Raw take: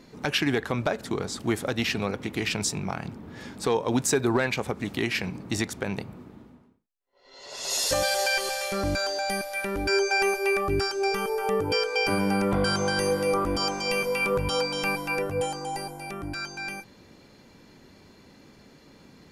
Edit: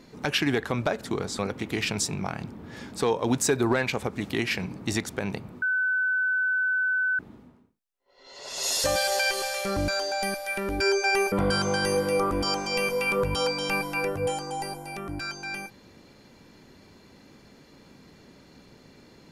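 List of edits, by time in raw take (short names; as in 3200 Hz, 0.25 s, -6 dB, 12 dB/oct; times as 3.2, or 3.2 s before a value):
1.39–2.03 cut
6.26 add tone 1510 Hz -22 dBFS 1.57 s
10.39–12.46 cut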